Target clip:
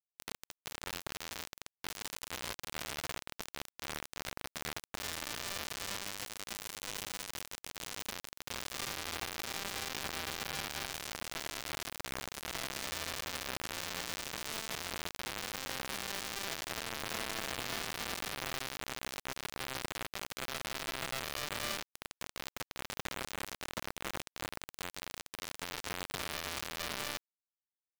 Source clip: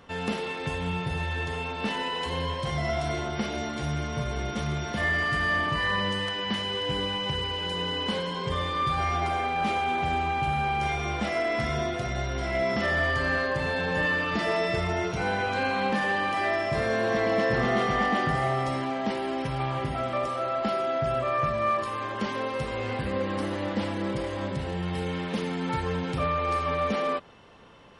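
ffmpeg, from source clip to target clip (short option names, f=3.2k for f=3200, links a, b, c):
-af "alimiter=limit=-22dB:level=0:latency=1:release=30,acrusher=bits=3:mix=0:aa=0.000001,volume=-6.5dB"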